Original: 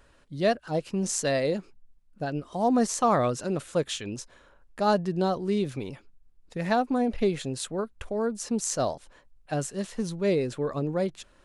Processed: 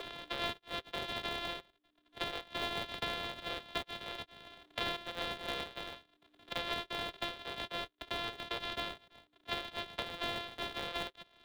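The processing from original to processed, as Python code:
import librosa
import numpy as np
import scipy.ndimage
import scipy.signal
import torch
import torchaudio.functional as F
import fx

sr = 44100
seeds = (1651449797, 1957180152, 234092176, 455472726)

p1 = np.r_[np.sort(x[:len(x) // 128 * 128].reshape(-1, 128), axis=1).ravel(), x[len(x) // 128 * 128:]]
p2 = fx.ladder_lowpass(p1, sr, hz=3900.0, resonance_pct=70)
p3 = fx.add_hum(p2, sr, base_hz=60, snr_db=12)
p4 = scipy.signal.sosfilt(scipy.signal.cheby1(6, 3, 380.0, 'highpass', fs=sr, output='sos'), p3)
p5 = fx.sample_hold(p4, sr, seeds[0], rate_hz=1400.0, jitter_pct=20)
p6 = p4 + (p5 * librosa.db_to_amplitude(-7.0))
y = fx.band_squash(p6, sr, depth_pct=100)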